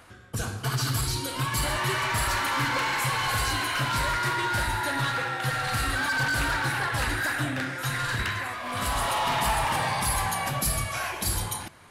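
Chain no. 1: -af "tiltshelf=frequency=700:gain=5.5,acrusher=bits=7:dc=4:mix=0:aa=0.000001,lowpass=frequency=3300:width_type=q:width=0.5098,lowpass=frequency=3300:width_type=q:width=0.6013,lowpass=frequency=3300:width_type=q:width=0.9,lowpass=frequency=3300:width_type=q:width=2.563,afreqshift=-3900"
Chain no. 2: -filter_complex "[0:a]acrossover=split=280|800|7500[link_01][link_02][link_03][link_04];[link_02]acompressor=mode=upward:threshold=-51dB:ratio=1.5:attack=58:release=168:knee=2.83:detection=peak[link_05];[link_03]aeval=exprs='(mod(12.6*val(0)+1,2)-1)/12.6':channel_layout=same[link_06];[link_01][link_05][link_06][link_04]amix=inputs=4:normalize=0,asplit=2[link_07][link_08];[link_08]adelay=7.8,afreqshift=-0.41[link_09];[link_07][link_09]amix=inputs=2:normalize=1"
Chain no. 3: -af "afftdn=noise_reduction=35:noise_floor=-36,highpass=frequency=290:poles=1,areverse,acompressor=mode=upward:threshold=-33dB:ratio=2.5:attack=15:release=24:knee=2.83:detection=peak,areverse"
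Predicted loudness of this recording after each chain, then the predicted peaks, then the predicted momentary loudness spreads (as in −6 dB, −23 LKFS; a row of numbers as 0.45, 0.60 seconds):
−23.5, −30.0, −28.0 LKFS; −13.0, −14.5, −17.5 dBFS; 4, 5, 5 LU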